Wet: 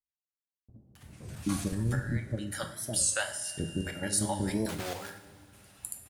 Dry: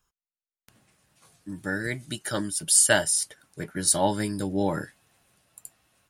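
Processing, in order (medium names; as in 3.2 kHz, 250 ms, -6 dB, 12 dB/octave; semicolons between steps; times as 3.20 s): 4.43–4.83 s: block-companded coder 3-bit; recorder AGC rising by 24 dB/s; gate with hold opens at -41 dBFS; peaking EQ 84 Hz +11.5 dB 1 oct; level held to a coarse grid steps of 10 dB; 1.72–2.20 s: RIAA curve playback; 3.17–3.85 s: whistle 2.8 kHz -41 dBFS; bands offset in time lows, highs 270 ms, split 530 Hz; on a send at -4 dB: reverberation, pre-delay 3 ms; on the sum: warped record 33 1/3 rpm, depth 160 cents; trim -8 dB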